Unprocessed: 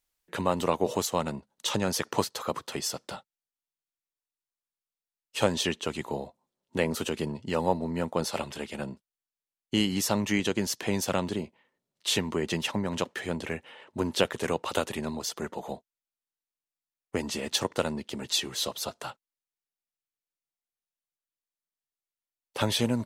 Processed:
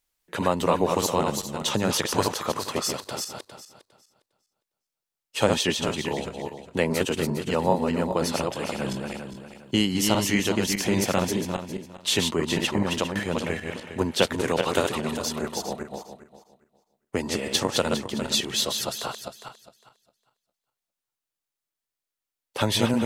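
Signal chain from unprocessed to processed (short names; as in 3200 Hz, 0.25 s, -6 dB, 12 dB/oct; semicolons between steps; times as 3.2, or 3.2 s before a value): regenerating reverse delay 0.203 s, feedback 43%, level -3.5 dB; 8.7–9.77 sustainer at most 27 dB/s; gain +3 dB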